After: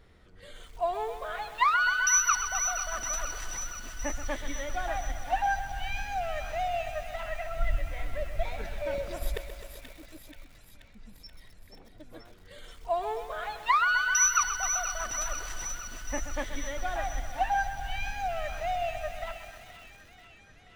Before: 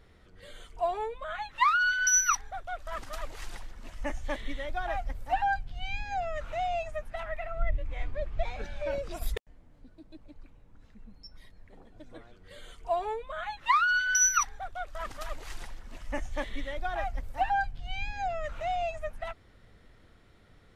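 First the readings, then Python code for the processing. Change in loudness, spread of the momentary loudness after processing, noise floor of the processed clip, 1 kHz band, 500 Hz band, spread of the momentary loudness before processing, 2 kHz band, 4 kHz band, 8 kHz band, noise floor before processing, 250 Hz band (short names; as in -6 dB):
+1.0 dB, 16 LU, -55 dBFS, +0.5 dB, +0.5 dB, 18 LU, +1.0 dB, +2.0 dB, +2.0 dB, -58 dBFS, +0.5 dB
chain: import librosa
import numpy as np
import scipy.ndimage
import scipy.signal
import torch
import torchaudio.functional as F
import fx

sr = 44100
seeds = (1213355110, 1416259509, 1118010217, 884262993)

p1 = x + fx.echo_wet_highpass(x, sr, ms=481, feedback_pct=66, hz=2000.0, wet_db=-7, dry=0)
y = fx.echo_crushed(p1, sr, ms=129, feedback_pct=80, bits=8, wet_db=-11)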